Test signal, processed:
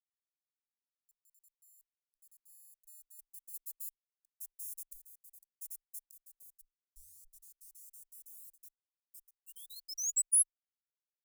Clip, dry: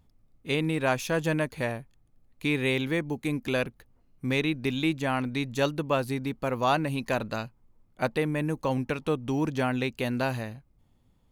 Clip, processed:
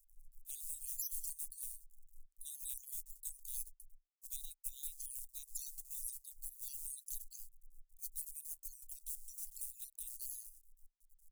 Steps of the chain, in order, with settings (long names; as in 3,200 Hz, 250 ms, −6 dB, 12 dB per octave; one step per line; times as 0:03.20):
time-frequency cells dropped at random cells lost 52%
log-companded quantiser 6 bits
inverse Chebyshev band-stop filter 110–1,600 Hz, stop band 80 dB
level +9.5 dB